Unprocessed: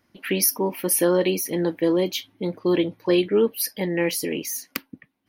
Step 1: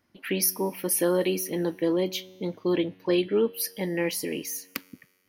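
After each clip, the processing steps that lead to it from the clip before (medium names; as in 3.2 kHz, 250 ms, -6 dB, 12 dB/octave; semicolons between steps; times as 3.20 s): feedback comb 93 Hz, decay 1.7 s, harmonics all, mix 40%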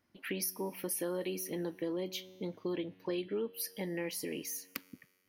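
compression 2.5:1, threshold -30 dBFS, peak gain reduction 7.5 dB; trim -5.5 dB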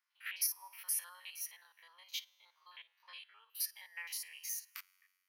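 spectrogram pixelated in time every 50 ms; steep high-pass 1 kHz 36 dB/octave; upward expansion 1.5:1, over -58 dBFS; trim +5.5 dB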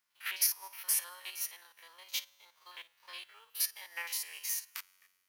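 formants flattened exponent 0.6; trim +5.5 dB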